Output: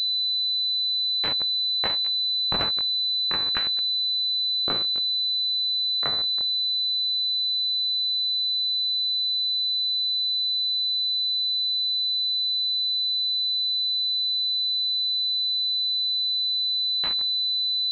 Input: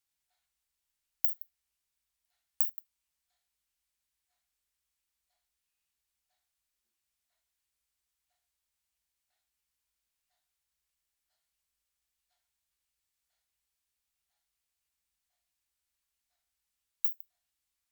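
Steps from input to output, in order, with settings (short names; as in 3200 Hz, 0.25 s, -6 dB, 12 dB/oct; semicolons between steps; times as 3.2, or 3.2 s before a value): gliding pitch shift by +9 st ending unshifted; echoes that change speed 0.279 s, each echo -4 st, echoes 3; pulse-width modulation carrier 4000 Hz; gain +8 dB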